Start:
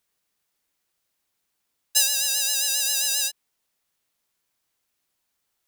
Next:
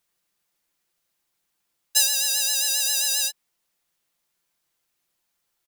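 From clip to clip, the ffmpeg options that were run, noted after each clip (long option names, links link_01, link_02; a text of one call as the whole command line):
ffmpeg -i in.wav -af "aecho=1:1:5.8:0.38" out.wav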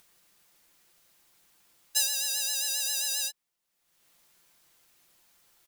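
ffmpeg -i in.wav -af "acompressor=mode=upward:threshold=-41dB:ratio=2.5,volume=-7dB" out.wav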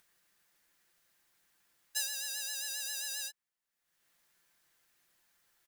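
ffmpeg -i in.wav -af "equalizer=frequency=1700:width=2.7:gain=7.5,volume=-9dB" out.wav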